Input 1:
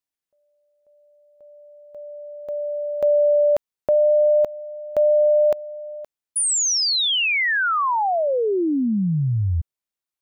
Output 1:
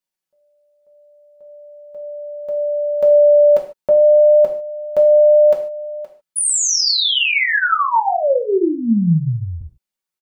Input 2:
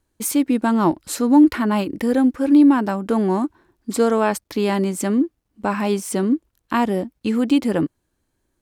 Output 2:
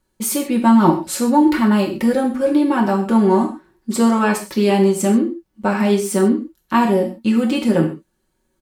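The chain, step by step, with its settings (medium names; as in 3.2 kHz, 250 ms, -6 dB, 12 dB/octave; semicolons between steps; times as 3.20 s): comb 5.4 ms, depth 56%; gated-style reverb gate 170 ms falling, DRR 1 dB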